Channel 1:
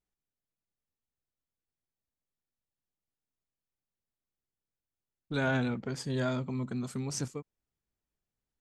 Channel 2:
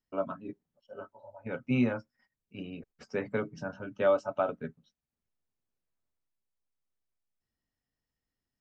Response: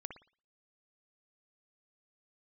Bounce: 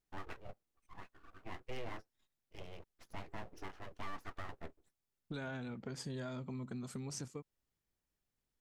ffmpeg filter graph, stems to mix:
-filter_complex "[0:a]acompressor=threshold=-40dB:ratio=12,volume=0dB[a];[1:a]aeval=exprs='abs(val(0))':c=same,volume=-6dB[b];[a][b]amix=inputs=2:normalize=0,alimiter=level_in=8.5dB:limit=-24dB:level=0:latency=1:release=110,volume=-8.5dB"

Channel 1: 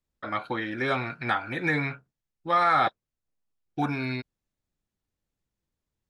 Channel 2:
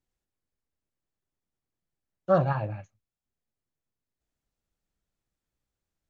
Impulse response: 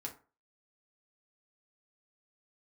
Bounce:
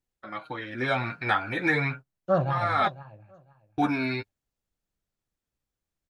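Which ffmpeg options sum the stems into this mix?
-filter_complex "[0:a]agate=range=-16dB:threshold=-42dB:ratio=16:detection=peak,dynaudnorm=f=220:g=7:m=9.5dB,flanger=delay=4:depth=6.9:regen=14:speed=0.37:shape=triangular,volume=-3.5dB[a];[1:a]volume=-1.5dB,asplit=3[b][c][d];[c]volume=-16dB[e];[d]apad=whole_len=268741[f];[a][f]sidechaincompress=threshold=-31dB:ratio=8:attack=11:release=500[g];[e]aecho=0:1:501|1002|1503:1|0.18|0.0324[h];[g][b][h]amix=inputs=3:normalize=0"

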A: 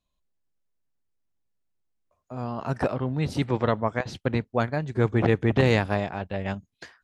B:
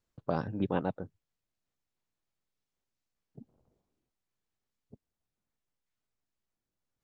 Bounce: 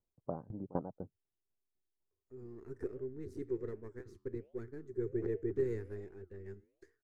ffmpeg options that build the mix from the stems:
-filter_complex "[0:a]aeval=exprs='if(lt(val(0),0),0.447*val(0),val(0))':c=same,firequalizer=gain_entry='entry(100,0);entry(150,-11);entry(260,-4);entry(390,14);entry(600,-23);entry(1800,-8);entry(2900,-25);entry(6600,-7)':delay=0.05:min_phase=1,flanger=delay=5.3:depth=6.9:regen=-90:speed=1.3:shape=sinusoidal,volume=-8.5dB[a];[1:a]lowpass=f=1k:w=0.5412,lowpass=f=1k:w=1.3066,aeval=exprs='val(0)*pow(10,-21*if(lt(mod(4*n/s,1),2*abs(4)/1000),1-mod(4*n/s,1)/(2*abs(4)/1000),(mod(4*n/s,1)-2*abs(4)/1000)/(1-2*abs(4)/1000))/20)':c=same,volume=-2.5dB[b];[a][b]amix=inputs=2:normalize=0"

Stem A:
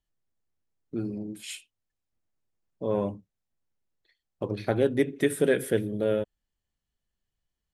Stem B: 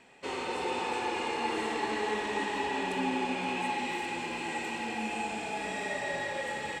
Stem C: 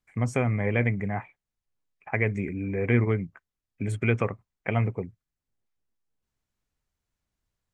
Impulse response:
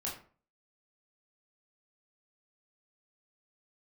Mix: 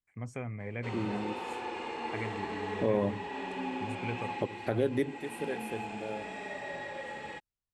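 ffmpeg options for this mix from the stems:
-filter_complex "[0:a]dynaudnorm=f=350:g=11:m=11.5dB,volume=-4.5dB[a];[1:a]aemphasis=mode=reproduction:type=50kf,adelay=600,volume=-5dB[b];[2:a]volume=-13.5dB,asplit=2[c][d];[d]apad=whole_len=341049[e];[a][e]sidechaingate=range=-17dB:threshold=-59dB:ratio=16:detection=peak[f];[f][b][c]amix=inputs=3:normalize=0,alimiter=limit=-18dB:level=0:latency=1:release=424"

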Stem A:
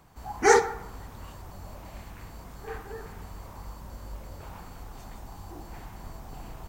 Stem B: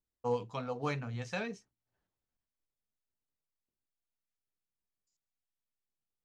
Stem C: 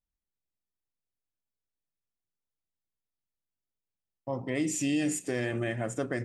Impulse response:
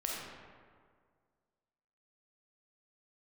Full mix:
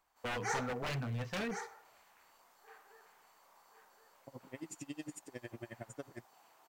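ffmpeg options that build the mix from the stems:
-filter_complex "[0:a]highpass=730,volume=-15dB,asplit=2[a][b];[b]volume=-7.5dB[c];[1:a]lowpass=2.9k,aeval=exprs='0.0178*(abs(mod(val(0)/0.0178+3,4)-2)-1)':c=same,volume=2.5dB[d];[2:a]aeval=exprs='val(0)*pow(10,-32*(0.5-0.5*cos(2*PI*11*n/s))/20)':c=same,volume=-10.5dB[e];[c]aecho=0:1:1071:1[f];[a][d][e][f]amix=inputs=4:normalize=0,asoftclip=type=hard:threshold=-26dB"

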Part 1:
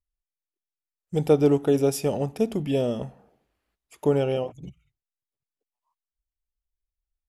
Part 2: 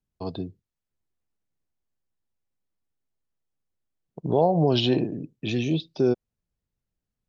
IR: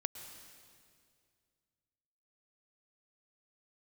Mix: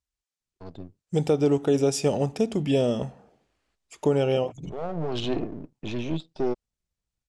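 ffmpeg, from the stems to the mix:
-filter_complex "[0:a]highpass=51,volume=2.5dB,asplit=2[a][b];[1:a]aeval=exprs='if(lt(val(0),0),0.251*val(0),val(0))':c=same,lowpass=f=2k:p=1,dynaudnorm=f=140:g=9:m=6dB,adelay=400,volume=-6.5dB[c];[b]apad=whole_len=339106[d];[c][d]sidechaincompress=threshold=-33dB:ratio=8:attack=7.4:release=802[e];[a][e]amix=inputs=2:normalize=0,lowpass=f=8.1k:w=0.5412,lowpass=f=8.1k:w=1.3066,highshelf=f=5.3k:g=8,alimiter=limit=-12.5dB:level=0:latency=1:release=257"

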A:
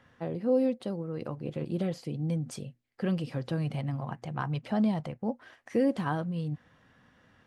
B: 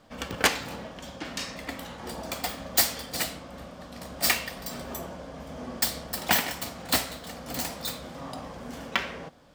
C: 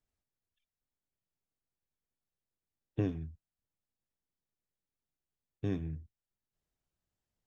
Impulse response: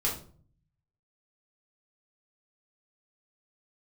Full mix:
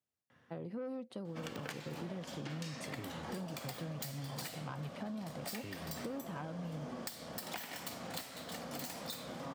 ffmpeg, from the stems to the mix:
-filter_complex "[0:a]asoftclip=type=tanh:threshold=-23dB,adelay=300,volume=-5.5dB[a];[1:a]acompressor=threshold=-34dB:ratio=6,adelay=1250,volume=-2.5dB[b];[2:a]acompressor=threshold=-35dB:ratio=6,volume=-4dB[c];[a][b][c]amix=inputs=3:normalize=0,highpass=f=97:w=0.5412,highpass=f=97:w=1.3066,acompressor=threshold=-39dB:ratio=6"

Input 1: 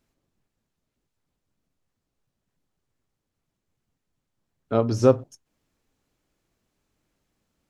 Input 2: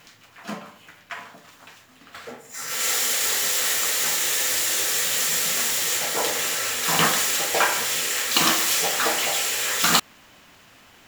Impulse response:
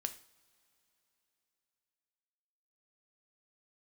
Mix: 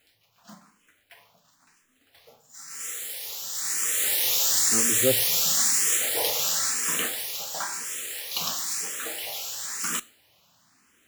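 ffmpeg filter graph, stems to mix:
-filter_complex "[0:a]volume=-6.5dB[a];[1:a]highpass=62,acrusher=bits=3:mode=log:mix=0:aa=0.000001,volume=-5.5dB,afade=t=in:st=3.49:d=0.73:silence=0.251189,afade=t=out:st=6.63:d=0.51:silence=0.354813,asplit=2[b][c];[c]volume=-6dB[d];[2:a]atrim=start_sample=2205[e];[d][e]afir=irnorm=-1:irlink=0[f];[a][b][f]amix=inputs=3:normalize=0,bass=f=250:g=2,treble=f=4k:g=7,asplit=2[g][h];[h]afreqshift=0.99[i];[g][i]amix=inputs=2:normalize=1"

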